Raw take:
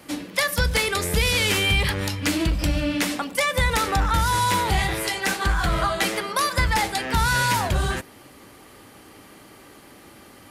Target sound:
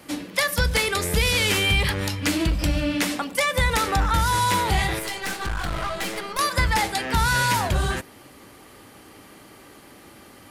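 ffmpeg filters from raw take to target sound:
ffmpeg -i in.wav -filter_complex "[0:a]asettb=1/sr,asplit=3[link_01][link_02][link_03];[link_01]atrim=end=4.994[link_04];[link_02]atrim=start=4.99:end=6.39,asetpts=PTS-STARTPTS,afade=type=in:duration=0.004:curve=qsin,afade=type=out:start_time=1.396:duration=0.004:curve=qsin,aeval=exprs='(tanh(15.8*val(0)+0.65)-tanh(0.65))/15.8':channel_layout=same[link_05];[link_03]atrim=start=6.386[link_06];[link_04][link_05]acrossfade=duration=0.004:curve1=hsin:curve2=qsin[link_07];[link_07][link_06]acrossfade=duration=0.004:curve1=qsin:curve2=hsin" out.wav

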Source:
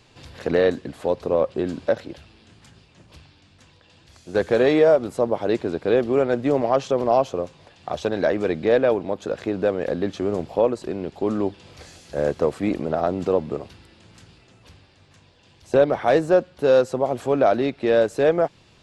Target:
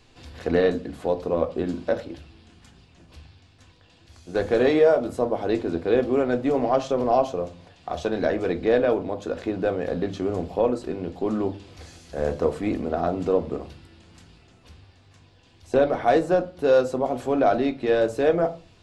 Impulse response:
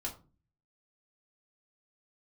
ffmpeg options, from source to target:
-filter_complex "[0:a]asplit=2[link_01][link_02];[1:a]atrim=start_sample=2205,lowshelf=frequency=110:gain=7[link_03];[link_02][link_03]afir=irnorm=-1:irlink=0,volume=-1dB[link_04];[link_01][link_04]amix=inputs=2:normalize=0,volume=-7dB"

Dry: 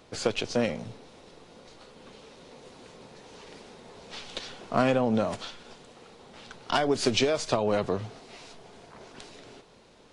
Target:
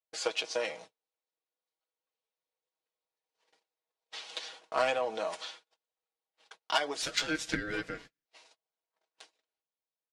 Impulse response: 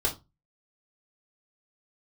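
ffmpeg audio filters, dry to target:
-filter_complex "[0:a]highpass=650,aecho=1:1:6.3:0.72,asettb=1/sr,asplit=3[link_01][link_02][link_03];[link_01]atrim=end=7.024[link_04];[link_02]atrim=start=7.02:end=8.26,asetpts=PTS-STARTPTS,afade=type=in:duration=0.004:curve=qsin,afade=type=out:start_time=1.236:duration=0.004:curve=qsin,aeval=exprs='val(0)*sin(2*PI*940*n/s)':channel_layout=same[link_05];[link_03]atrim=start=8.256[link_06];[link_04][link_05]acrossfade=duration=0.004:curve1=hsin:curve2=qsin[link_07];[link_07][link_06]acrossfade=duration=0.004:curve1=qsin:curve2=hsin,equalizer=frequency=1300:width=3.4:gain=-3,agate=range=-40dB:threshold=-45dB:ratio=16:detection=peak,aeval=exprs='0.316*(cos(1*acos(clip(val(0)/0.316,-1,1)))-cos(1*PI/2))+0.01*(cos(7*acos(clip(val(0)/0.316,-1,1)))-cos(7*PI/2))':channel_layout=same,volume=-1.5dB"

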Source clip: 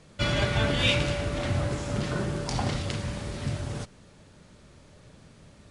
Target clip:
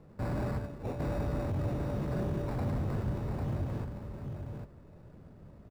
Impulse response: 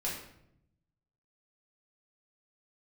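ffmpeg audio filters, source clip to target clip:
-filter_complex "[0:a]asplit=3[link_01][link_02][link_03];[link_01]afade=type=out:start_time=0.57:duration=0.02[link_04];[link_02]agate=range=-33dB:threshold=-14dB:ratio=3:detection=peak,afade=type=in:start_time=0.57:duration=0.02,afade=type=out:start_time=0.99:duration=0.02[link_05];[link_03]afade=type=in:start_time=0.99:duration=0.02[link_06];[link_04][link_05][link_06]amix=inputs=3:normalize=0,acrusher=samples=14:mix=1:aa=0.000001,volume=29dB,asoftclip=hard,volume=-29dB,tiltshelf=frequency=1400:gain=9,aecho=1:1:798:0.501,volume=-9dB"

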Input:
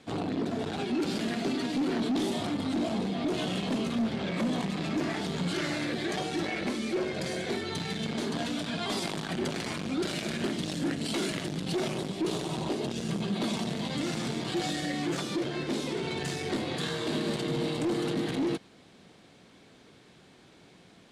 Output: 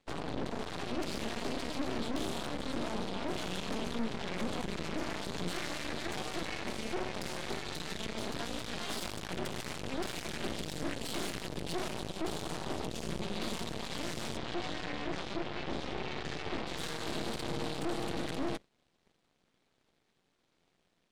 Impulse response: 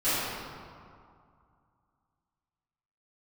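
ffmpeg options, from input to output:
-filter_complex "[0:a]bandreject=frequency=50:width_type=h:width=6,bandreject=frequency=100:width_type=h:width=6,bandreject=frequency=150:width_type=h:width=6,bandreject=frequency=200:width_type=h:width=6,bandreject=frequency=250:width_type=h:width=6,bandreject=frequency=300:width_type=h:width=6,aeval=exprs='0.1*(cos(1*acos(clip(val(0)/0.1,-1,1)))-cos(1*PI/2))+0.01*(cos(3*acos(clip(val(0)/0.1,-1,1)))-cos(3*PI/2))+0.0282*(cos(4*acos(clip(val(0)/0.1,-1,1)))-cos(4*PI/2))+0.00891*(cos(7*acos(clip(val(0)/0.1,-1,1)))-cos(7*PI/2))+0.00355*(cos(8*acos(clip(val(0)/0.1,-1,1)))-cos(8*PI/2))':channel_layout=same,asettb=1/sr,asplit=3[link_01][link_02][link_03];[link_01]atrim=end=14.374[link_04];[link_02]atrim=start=14.37:end=16.67,asetpts=PTS-STARTPTS,afade=type=in:duration=0.004:curve=qsin,afade=type=out:start_time=2.296:duration=0.004:curve=qsin,lowpass=4000[link_05];[link_03]atrim=start=16.666[link_06];[link_04][link_05]acrossfade=duration=0.004:curve1=hsin:curve2=qsin[link_07];[link_07][link_06]acrossfade=duration=0.004:curve1=qsin:curve2=hsin,alimiter=level_in=1dB:limit=-24dB:level=0:latency=1:release=47,volume=-1dB"

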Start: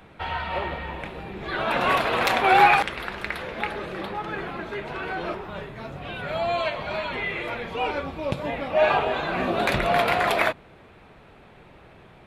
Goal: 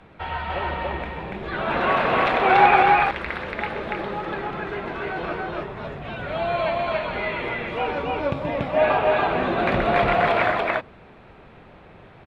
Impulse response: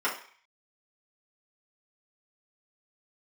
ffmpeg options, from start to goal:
-filter_complex "[0:a]acrossover=split=3700[link_01][link_02];[link_02]acompressor=threshold=-46dB:ratio=4:attack=1:release=60[link_03];[link_01][link_03]amix=inputs=2:normalize=0,aemphasis=mode=reproduction:type=50fm,asplit=2[link_04][link_05];[link_05]aecho=0:1:128.3|285.7:0.316|0.891[link_06];[link_04][link_06]amix=inputs=2:normalize=0"

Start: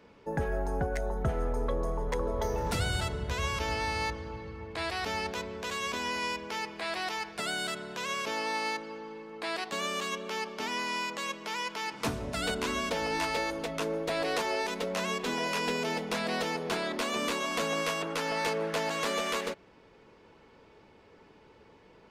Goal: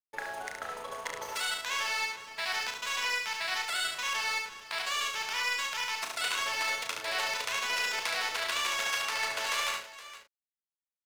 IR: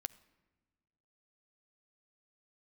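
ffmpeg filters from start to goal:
-filter_complex "[0:a]highpass=1200,asplit=2[link_01][link_02];[link_02]acompressor=threshold=-45dB:ratio=6,volume=2dB[link_03];[link_01][link_03]amix=inputs=2:normalize=0,atempo=2,aeval=exprs='sgn(val(0))*max(abs(val(0))-0.00501,0)':channel_layout=same,asplit=2[link_04][link_05];[link_05]adelay=35,volume=-5.5dB[link_06];[link_04][link_06]amix=inputs=2:normalize=0,asplit=2[link_07][link_08];[link_08]aecho=0:1:71|468:0.596|0.178[link_09];[link_07][link_09]amix=inputs=2:normalize=0,volume=1.5dB"

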